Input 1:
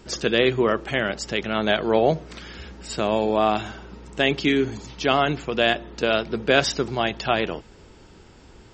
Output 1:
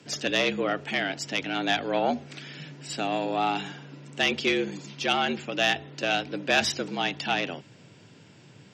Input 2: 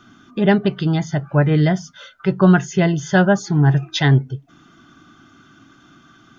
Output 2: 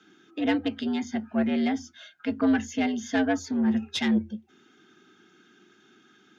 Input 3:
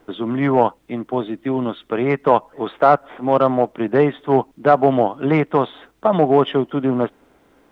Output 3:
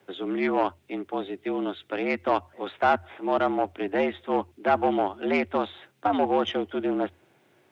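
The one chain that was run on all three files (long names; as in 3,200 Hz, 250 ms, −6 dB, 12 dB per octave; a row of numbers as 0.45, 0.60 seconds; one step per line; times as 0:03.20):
graphic EQ with 15 bands 400 Hz −7 dB, 1,000 Hz −6 dB, 2,500 Hz +4 dB
tube saturation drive 9 dB, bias 0.5
frequency shifter +83 Hz
loudness normalisation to −27 LKFS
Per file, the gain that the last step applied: −0.5, −6.0, −2.5 decibels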